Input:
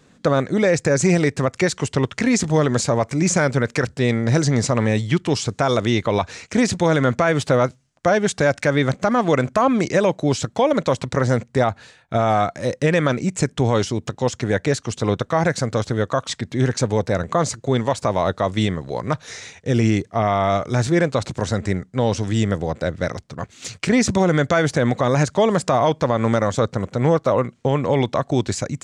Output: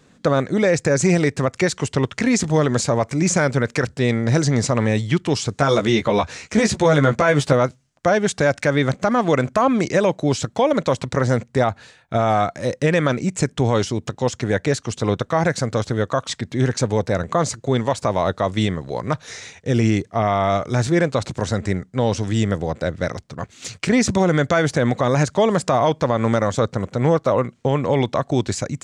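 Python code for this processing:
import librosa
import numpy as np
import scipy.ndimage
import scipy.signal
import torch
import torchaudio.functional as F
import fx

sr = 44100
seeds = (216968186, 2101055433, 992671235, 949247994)

y = fx.doubler(x, sr, ms=14.0, db=-3.5, at=(5.56, 7.53))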